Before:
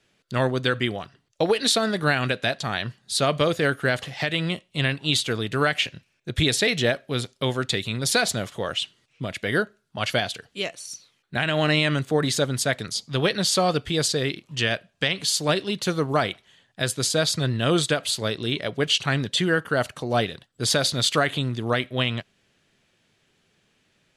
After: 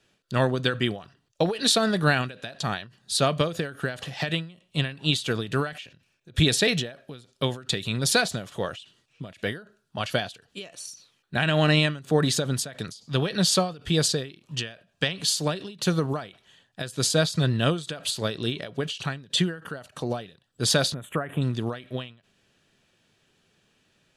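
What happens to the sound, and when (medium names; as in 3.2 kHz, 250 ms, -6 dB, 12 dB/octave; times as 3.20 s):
20.94–21.42 s: Butterworth band-stop 4.9 kHz, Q 0.54
whole clip: dynamic bell 170 Hz, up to +6 dB, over -41 dBFS, Q 3.8; band-stop 2.1 kHz, Q 9.5; endings held to a fixed fall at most 140 dB/s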